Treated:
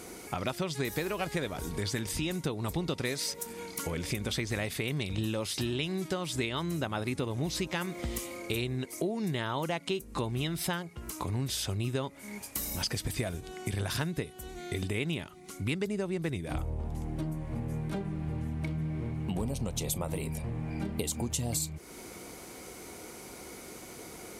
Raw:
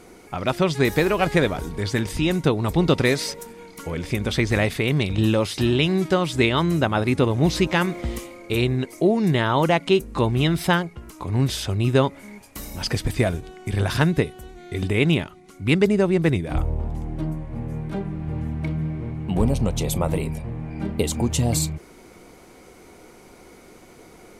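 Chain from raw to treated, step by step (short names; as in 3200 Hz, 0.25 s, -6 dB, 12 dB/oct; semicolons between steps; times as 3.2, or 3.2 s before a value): HPF 42 Hz; high shelf 4300 Hz +10 dB; compressor 4:1, threshold -32 dBFS, peak gain reduction 16.5 dB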